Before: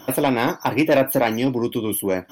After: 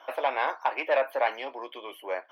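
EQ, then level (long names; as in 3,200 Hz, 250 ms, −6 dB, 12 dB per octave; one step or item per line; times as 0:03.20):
high-pass filter 620 Hz 24 dB per octave
high-frequency loss of the air 370 metres
−1.5 dB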